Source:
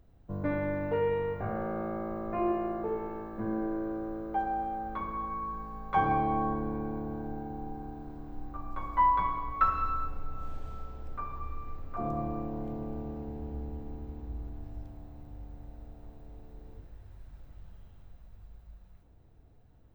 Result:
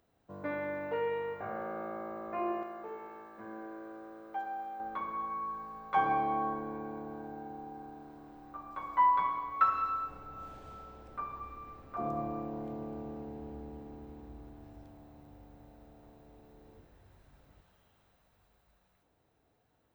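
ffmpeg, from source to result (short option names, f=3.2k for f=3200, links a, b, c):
-af "asetnsamples=n=441:p=0,asendcmd='2.63 highpass f 1500;4.8 highpass f 520;10.09 highpass f 250;17.61 highpass f 710',highpass=f=670:p=1"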